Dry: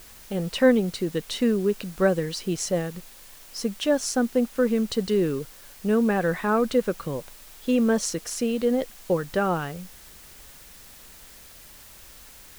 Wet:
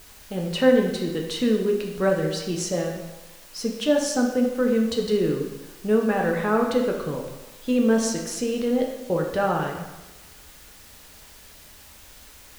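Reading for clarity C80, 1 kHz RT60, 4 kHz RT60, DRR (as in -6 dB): 6.5 dB, 1.1 s, 0.90 s, 0.5 dB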